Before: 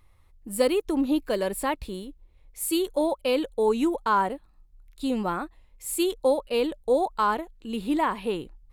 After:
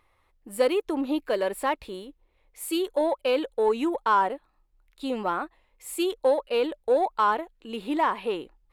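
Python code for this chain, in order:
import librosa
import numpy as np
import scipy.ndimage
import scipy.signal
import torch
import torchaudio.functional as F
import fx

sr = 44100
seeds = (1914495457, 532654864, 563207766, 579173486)

p1 = fx.bass_treble(x, sr, bass_db=-15, treble_db=-9)
p2 = 10.0 ** (-25.5 / 20.0) * np.tanh(p1 / 10.0 ** (-25.5 / 20.0))
y = p1 + F.gain(torch.from_numpy(p2), -8.0).numpy()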